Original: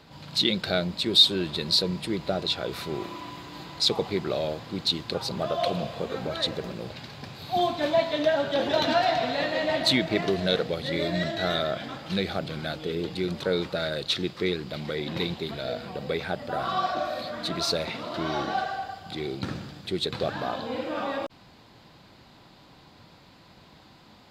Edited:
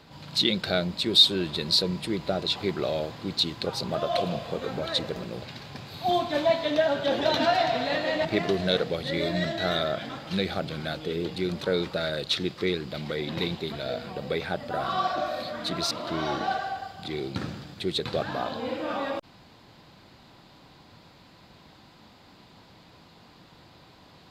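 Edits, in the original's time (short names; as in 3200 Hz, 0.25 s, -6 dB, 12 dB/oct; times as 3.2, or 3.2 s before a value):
2.56–4.04 cut
9.73–10.04 cut
17.7–17.98 cut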